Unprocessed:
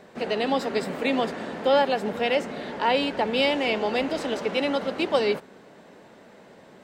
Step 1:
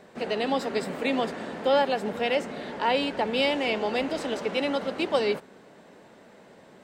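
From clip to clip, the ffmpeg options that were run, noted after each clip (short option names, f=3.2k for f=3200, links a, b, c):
-af "equalizer=f=8.4k:t=o:w=0.41:g=2.5,volume=-2dB"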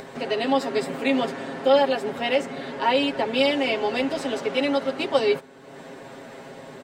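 -af "aecho=1:1:7.4:0.94,acompressor=mode=upward:threshold=-31dB:ratio=2.5"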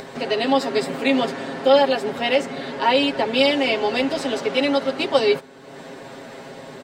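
-af "equalizer=f=4.5k:w=1.5:g=3.5,volume=3dB"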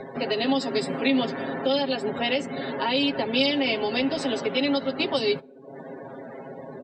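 -filter_complex "[0:a]afftdn=nr=31:nf=-38,acrossover=split=300|3000[a][b][c];[b]acompressor=threshold=-26dB:ratio=6[d];[a][d][c]amix=inputs=3:normalize=0"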